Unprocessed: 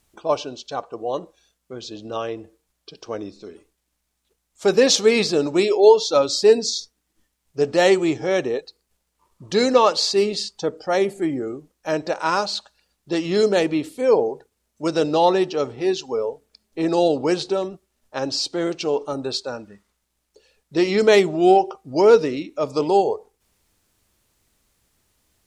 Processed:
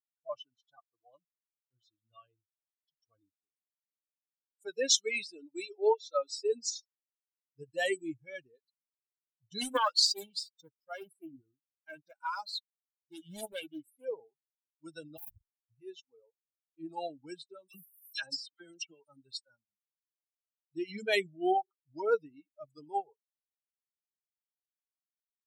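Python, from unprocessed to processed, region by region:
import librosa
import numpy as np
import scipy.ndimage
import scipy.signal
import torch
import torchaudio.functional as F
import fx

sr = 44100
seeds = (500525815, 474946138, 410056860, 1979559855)

y = fx.chain(x, sr, fx.highpass(hz=240.0, slope=12),
    fx.high_shelf(hz=6000.0, db=-5.0), at=(4.66, 6.52))
y = fx.chain(y, sr, fx.law_mismatch(coded='A'),
    fx.high_shelf(hz=2000.0, db=3.5),
    fx.doppler_dist(depth_ms=0.48), at=(9.61, 14.05))
y = fx.chain(y, sr, fx.fixed_phaser(hz=1100.0, stages=4),
    fx.schmitt(flips_db=-21.0),
    fx.transformer_sat(knee_hz=480.0), at=(15.17, 15.7))
y = fx.chain(y, sr, fx.dispersion(late='lows', ms=63.0, hz=2100.0),
    fx.band_squash(depth_pct=100), at=(17.68, 19.08))
y = fx.bin_expand(y, sr, power=3.0)
y = fx.tilt_eq(y, sr, slope=3.0)
y = y * 10.0 ** (-8.0 / 20.0)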